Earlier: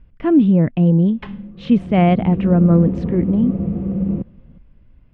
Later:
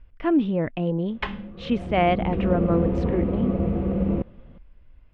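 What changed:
background +8.0 dB; master: add bell 170 Hz -13.5 dB 1.8 oct

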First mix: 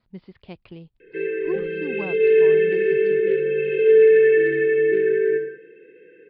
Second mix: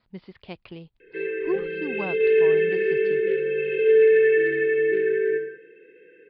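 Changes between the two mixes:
speech +4.5 dB; master: add low shelf 420 Hz -6.5 dB

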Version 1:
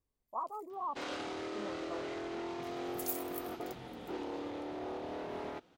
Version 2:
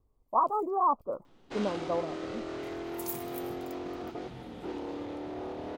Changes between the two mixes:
speech +12.0 dB; first sound: entry +0.55 s; master: add low shelf 300 Hz +7 dB

